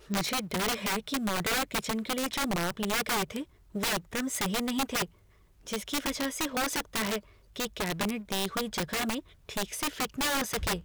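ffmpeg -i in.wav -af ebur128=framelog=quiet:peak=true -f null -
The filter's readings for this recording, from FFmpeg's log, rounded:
Integrated loudness:
  I:         -31.0 LUFS
  Threshold: -41.1 LUFS
Loudness range:
  LRA:         2.6 LU
  Threshold: -51.4 LUFS
  LRA low:   -32.6 LUFS
  LRA high:  -30.0 LUFS
True peak:
  Peak:      -19.1 dBFS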